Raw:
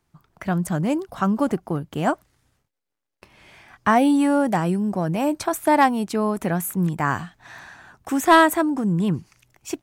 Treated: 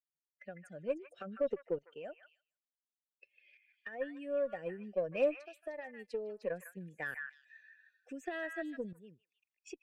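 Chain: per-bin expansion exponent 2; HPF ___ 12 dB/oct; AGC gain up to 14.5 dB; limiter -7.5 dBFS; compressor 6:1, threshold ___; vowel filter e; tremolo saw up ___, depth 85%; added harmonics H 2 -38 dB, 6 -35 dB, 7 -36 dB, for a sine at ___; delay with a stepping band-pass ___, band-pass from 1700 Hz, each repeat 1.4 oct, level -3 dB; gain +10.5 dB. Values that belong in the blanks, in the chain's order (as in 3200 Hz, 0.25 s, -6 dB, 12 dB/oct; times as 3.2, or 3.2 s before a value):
200 Hz, -30 dBFS, 0.56 Hz, -30.5 dBFS, 0.152 s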